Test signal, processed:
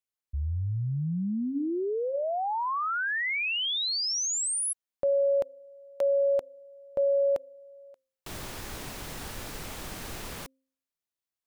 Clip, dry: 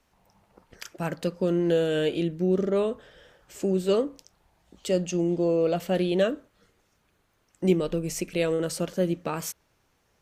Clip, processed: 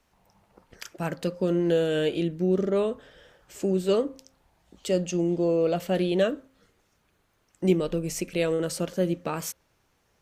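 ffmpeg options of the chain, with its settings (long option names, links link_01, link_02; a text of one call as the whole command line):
ffmpeg -i in.wav -af "bandreject=frequency=265.2:width_type=h:width=4,bandreject=frequency=530.4:width_type=h:width=4" out.wav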